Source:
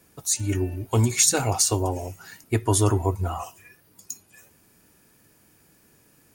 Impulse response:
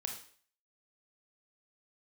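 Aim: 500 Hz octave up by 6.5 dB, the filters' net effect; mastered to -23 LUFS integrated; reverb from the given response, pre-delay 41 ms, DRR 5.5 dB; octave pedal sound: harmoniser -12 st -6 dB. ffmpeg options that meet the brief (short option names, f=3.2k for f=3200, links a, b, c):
-filter_complex "[0:a]equalizer=f=500:t=o:g=8.5,asplit=2[a][b];[1:a]atrim=start_sample=2205,adelay=41[c];[b][c]afir=irnorm=-1:irlink=0,volume=-5.5dB[d];[a][d]amix=inputs=2:normalize=0,asplit=2[e][f];[f]asetrate=22050,aresample=44100,atempo=2,volume=-6dB[g];[e][g]amix=inputs=2:normalize=0,volume=-3.5dB"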